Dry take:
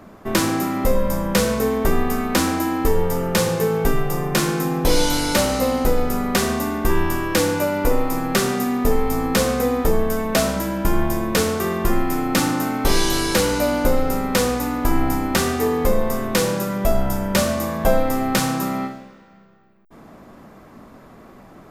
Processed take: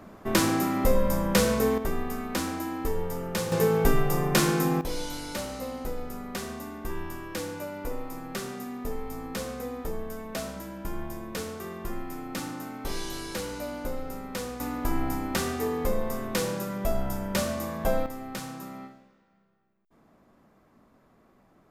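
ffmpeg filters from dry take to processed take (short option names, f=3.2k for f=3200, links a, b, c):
-af "asetnsamples=n=441:p=0,asendcmd='1.78 volume volume -11dB;3.52 volume volume -3dB;4.81 volume volume -15.5dB;14.6 volume volume -9dB;18.06 volume volume -17dB',volume=-4dB"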